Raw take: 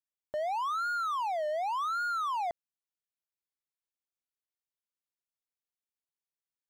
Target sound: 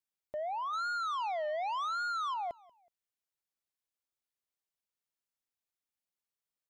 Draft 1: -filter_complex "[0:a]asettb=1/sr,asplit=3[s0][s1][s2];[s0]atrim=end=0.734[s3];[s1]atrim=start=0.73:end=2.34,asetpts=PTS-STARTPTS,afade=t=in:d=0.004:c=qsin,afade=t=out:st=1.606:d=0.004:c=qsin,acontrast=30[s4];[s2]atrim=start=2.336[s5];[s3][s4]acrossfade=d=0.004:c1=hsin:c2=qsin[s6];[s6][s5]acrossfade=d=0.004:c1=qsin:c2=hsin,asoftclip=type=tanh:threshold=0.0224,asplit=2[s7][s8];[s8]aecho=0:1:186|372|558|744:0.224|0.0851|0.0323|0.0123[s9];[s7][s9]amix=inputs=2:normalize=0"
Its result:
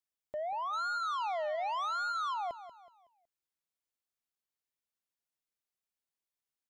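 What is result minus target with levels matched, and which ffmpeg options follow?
echo-to-direct +11 dB
-filter_complex "[0:a]asettb=1/sr,asplit=3[s0][s1][s2];[s0]atrim=end=0.734[s3];[s1]atrim=start=0.73:end=2.34,asetpts=PTS-STARTPTS,afade=t=in:d=0.004:c=qsin,afade=t=out:st=1.606:d=0.004:c=qsin,acontrast=30[s4];[s2]atrim=start=2.336[s5];[s3][s4]acrossfade=d=0.004:c1=hsin:c2=qsin[s6];[s6][s5]acrossfade=d=0.004:c1=qsin:c2=hsin,asoftclip=type=tanh:threshold=0.0224,asplit=2[s7][s8];[s8]aecho=0:1:186|372:0.0631|0.024[s9];[s7][s9]amix=inputs=2:normalize=0"

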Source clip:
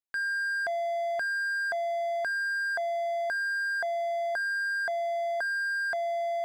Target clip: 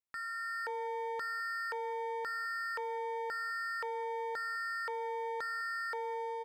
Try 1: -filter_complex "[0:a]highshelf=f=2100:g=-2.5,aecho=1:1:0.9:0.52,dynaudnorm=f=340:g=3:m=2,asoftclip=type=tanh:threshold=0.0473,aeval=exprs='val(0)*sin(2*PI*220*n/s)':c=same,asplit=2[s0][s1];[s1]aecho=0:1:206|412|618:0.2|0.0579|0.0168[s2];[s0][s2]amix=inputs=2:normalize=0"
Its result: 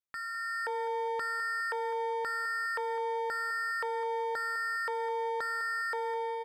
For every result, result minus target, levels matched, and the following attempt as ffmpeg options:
echo-to-direct +10 dB; saturation: distortion -7 dB
-filter_complex "[0:a]highshelf=f=2100:g=-2.5,aecho=1:1:0.9:0.52,dynaudnorm=f=340:g=3:m=2,asoftclip=type=tanh:threshold=0.0473,aeval=exprs='val(0)*sin(2*PI*220*n/s)':c=same,asplit=2[s0][s1];[s1]aecho=0:1:206|412:0.0631|0.0183[s2];[s0][s2]amix=inputs=2:normalize=0"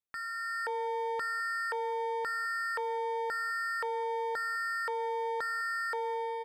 saturation: distortion -7 dB
-filter_complex "[0:a]highshelf=f=2100:g=-2.5,aecho=1:1:0.9:0.52,dynaudnorm=f=340:g=3:m=2,asoftclip=type=tanh:threshold=0.0224,aeval=exprs='val(0)*sin(2*PI*220*n/s)':c=same,asplit=2[s0][s1];[s1]aecho=0:1:206|412:0.0631|0.0183[s2];[s0][s2]amix=inputs=2:normalize=0"

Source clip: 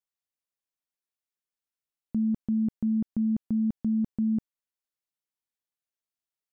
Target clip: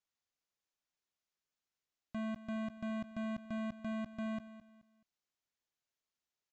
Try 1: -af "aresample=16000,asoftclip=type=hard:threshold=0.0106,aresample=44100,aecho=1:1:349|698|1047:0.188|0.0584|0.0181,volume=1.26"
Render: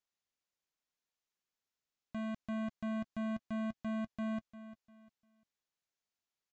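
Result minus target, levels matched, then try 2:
echo 135 ms late
-af "aresample=16000,asoftclip=type=hard:threshold=0.0106,aresample=44100,aecho=1:1:214|428|642:0.188|0.0584|0.0181,volume=1.26"

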